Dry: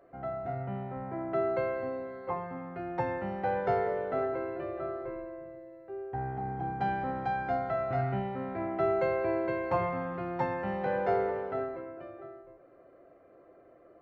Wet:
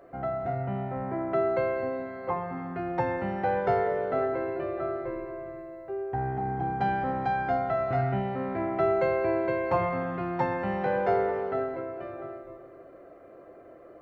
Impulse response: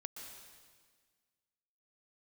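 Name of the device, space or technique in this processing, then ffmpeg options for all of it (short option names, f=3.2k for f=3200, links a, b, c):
compressed reverb return: -filter_complex "[0:a]asplit=2[a][b];[1:a]atrim=start_sample=2205[c];[b][c]afir=irnorm=-1:irlink=0,acompressor=threshold=-43dB:ratio=6,volume=4.5dB[d];[a][d]amix=inputs=2:normalize=0,volume=1.5dB"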